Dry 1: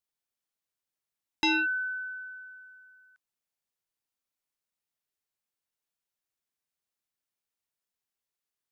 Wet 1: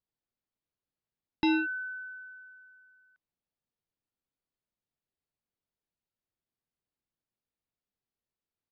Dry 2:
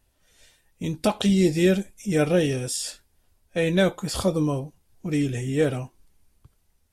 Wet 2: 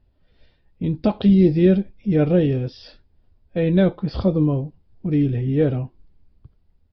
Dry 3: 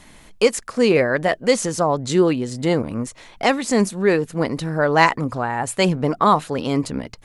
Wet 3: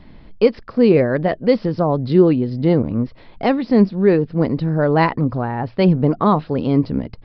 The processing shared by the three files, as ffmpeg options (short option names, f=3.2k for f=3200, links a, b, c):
-af "tiltshelf=f=640:g=7.5,aresample=11025,aresample=44100"